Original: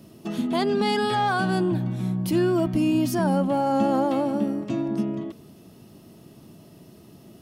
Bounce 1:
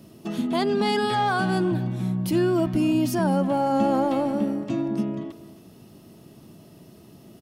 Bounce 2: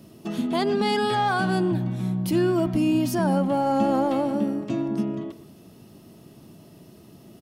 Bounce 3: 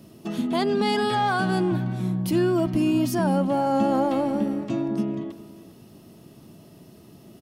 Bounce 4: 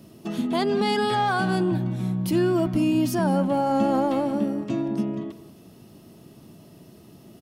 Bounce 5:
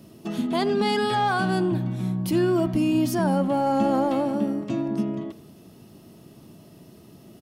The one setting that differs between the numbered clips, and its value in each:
speakerphone echo, time: 270 ms, 120 ms, 400 ms, 180 ms, 80 ms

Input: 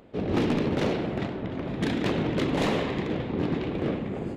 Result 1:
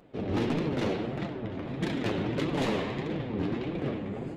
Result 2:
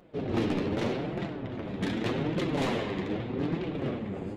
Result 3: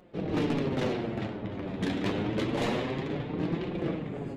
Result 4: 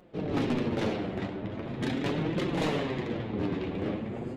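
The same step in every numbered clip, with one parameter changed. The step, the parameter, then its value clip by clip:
flange, rate: 1.6 Hz, 0.83 Hz, 0.27 Hz, 0.41 Hz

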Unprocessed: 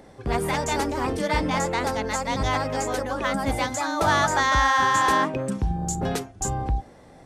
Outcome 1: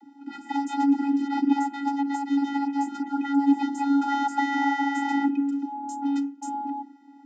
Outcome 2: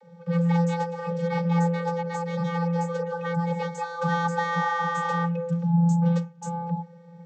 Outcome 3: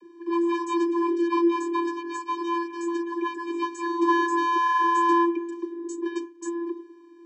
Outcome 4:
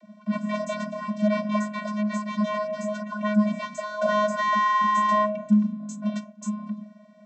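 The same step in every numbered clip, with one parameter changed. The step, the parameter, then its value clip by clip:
vocoder, frequency: 280 Hz, 170 Hz, 340 Hz, 210 Hz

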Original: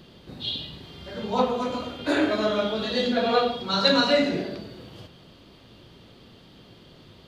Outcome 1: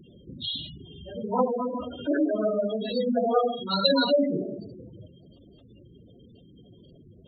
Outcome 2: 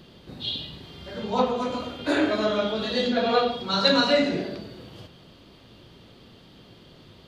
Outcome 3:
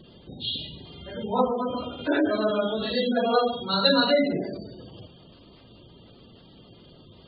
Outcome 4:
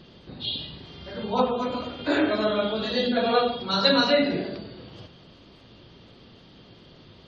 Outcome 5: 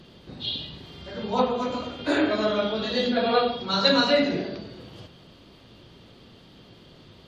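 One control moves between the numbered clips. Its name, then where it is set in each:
spectral gate, under each frame's peak: -10 dB, -60 dB, -20 dB, -35 dB, -45 dB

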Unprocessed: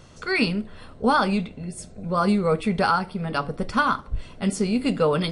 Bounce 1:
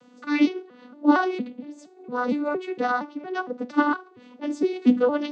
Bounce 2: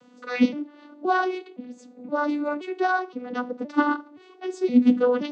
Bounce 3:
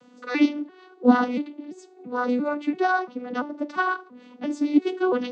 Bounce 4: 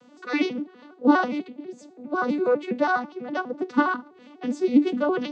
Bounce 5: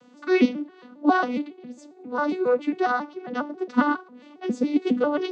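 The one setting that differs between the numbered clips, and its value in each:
vocoder on a broken chord, a note every: 231 ms, 520 ms, 341 ms, 82 ms, 136 ms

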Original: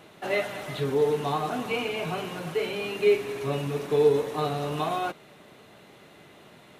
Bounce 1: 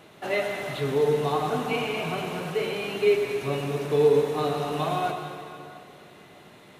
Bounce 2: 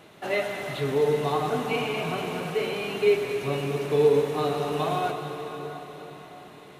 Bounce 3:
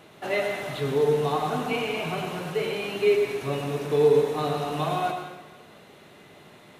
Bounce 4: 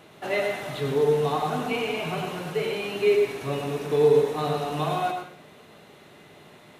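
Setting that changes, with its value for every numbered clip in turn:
plate-style reverb, RT60: 2.5 s, 5.3 s, 1.1 s, 0.51 s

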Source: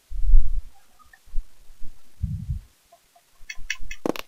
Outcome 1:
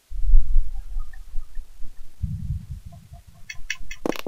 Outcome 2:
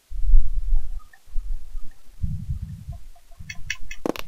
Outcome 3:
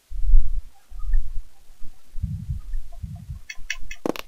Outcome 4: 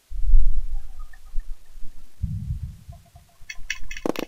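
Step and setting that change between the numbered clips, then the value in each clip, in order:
echo whose repeats swap between lows and highs, time: 209 ms, 389 ms, 800 ms, 131 ms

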